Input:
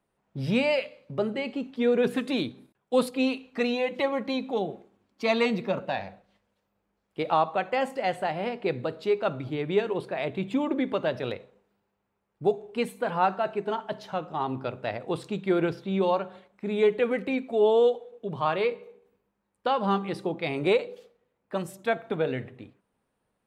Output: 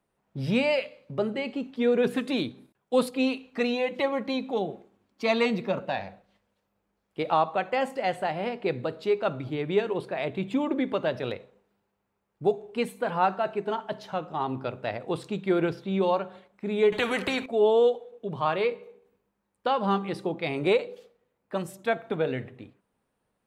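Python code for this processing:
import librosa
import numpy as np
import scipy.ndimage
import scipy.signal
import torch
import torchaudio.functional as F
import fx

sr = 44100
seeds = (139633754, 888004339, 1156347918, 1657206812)

y = fx.spectral_comp(x, sr, ratio=2.0, at=(16.92, 17.46))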